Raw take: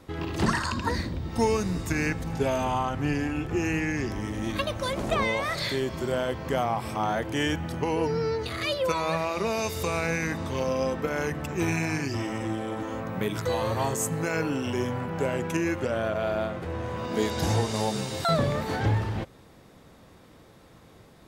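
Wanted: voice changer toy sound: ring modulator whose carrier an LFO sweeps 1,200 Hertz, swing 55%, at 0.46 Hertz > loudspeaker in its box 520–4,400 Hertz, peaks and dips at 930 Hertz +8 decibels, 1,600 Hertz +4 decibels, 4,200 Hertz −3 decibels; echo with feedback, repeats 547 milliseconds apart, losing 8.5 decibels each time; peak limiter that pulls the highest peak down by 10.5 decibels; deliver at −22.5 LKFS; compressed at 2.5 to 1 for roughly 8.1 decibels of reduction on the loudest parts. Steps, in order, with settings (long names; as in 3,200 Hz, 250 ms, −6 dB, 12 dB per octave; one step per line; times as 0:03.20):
downward compressor 2.5 to 1, threshold −32 dBFS
brickwall limiter −27.5 dBFS
repeating echo 547 ms, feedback 38%, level −8.5 dB
ring modulator whose carrier an LFO sweeps 1,200 Hz, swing 55%, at 0.46 Hz
loudspeaker in its box 520–4,400 Hz, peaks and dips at 930 Hz +8 dB, 1,600 Hz +4 dB, 4,200 Hz −3 dB
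level +13 dB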